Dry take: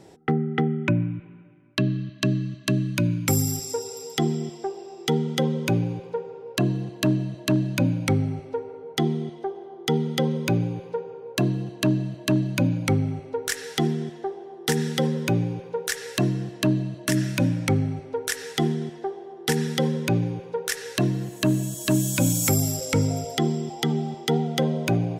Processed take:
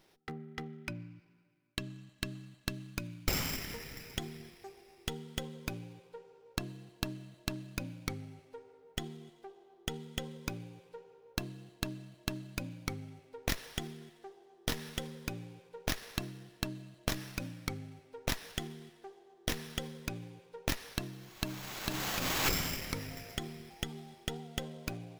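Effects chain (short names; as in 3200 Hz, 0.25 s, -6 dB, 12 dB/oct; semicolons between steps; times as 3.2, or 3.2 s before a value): pre-emphasis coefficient 0.9; running maximum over 5 samples; gain -2 dB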